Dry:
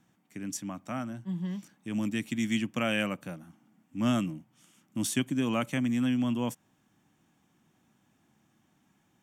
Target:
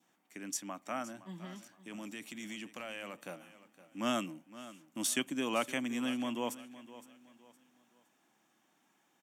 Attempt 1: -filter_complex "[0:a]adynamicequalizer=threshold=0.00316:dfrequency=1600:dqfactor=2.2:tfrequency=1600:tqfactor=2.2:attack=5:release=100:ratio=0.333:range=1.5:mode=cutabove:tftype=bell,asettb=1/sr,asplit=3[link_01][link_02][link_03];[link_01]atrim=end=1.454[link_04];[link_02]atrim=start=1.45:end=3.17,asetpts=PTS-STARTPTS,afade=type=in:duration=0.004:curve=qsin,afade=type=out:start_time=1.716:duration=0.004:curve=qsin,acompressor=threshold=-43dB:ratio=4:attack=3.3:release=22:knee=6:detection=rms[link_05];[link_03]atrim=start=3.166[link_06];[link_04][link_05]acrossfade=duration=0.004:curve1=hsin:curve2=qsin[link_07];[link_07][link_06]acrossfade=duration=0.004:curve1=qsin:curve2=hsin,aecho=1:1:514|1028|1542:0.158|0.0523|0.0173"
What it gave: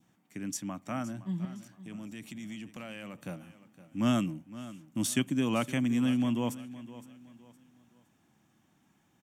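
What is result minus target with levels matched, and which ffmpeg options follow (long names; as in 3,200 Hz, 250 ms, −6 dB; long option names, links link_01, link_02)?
500 Hz band −3.5 dB
-filter_complex "[0:a]adynamicequalizer=threshold=0.00316:dfrequency=1600:dqfactor=2.2:tfrequency=1600:tqfactor=2.2:attack=5:release=100:ratio=0.333:range=1.5:mode=cutabove:tftype=bell,highpass=380,asettb=1/sr,asplit=3[link_01][link_02][link_03];[link_01]atrim=end=1.454[link_04];[link_02]atrim=start=1.45:end=3.17,asetpts=PTS-STARTPTS,afade=type=in:duration=0.004:curve=qsin,afade=type=out:start_time=1.716:duration=0.004:curve=qsin,acompressor=threshold=-43dB:ratio=4:attack=3.3:release=22:knee=6:detection=rms[link_05];[link_03]atrim=start=3.166[link_06];[link_04][link_05]acrossfade=duration=0.004:curve1=hsin:curve2=qsin[link_07];[link_07][link_06]acrossfade=duration=0.004:curve1=qsin:curve2=hsin,aecho=1:1:514|1028|1542:0.158|0.0523|0.0173"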